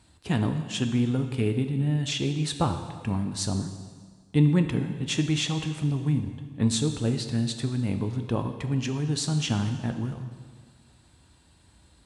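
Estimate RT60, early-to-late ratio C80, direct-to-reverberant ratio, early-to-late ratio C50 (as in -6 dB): 1.7 s, 9.5 dB, 6.5 dB, 8.5 dB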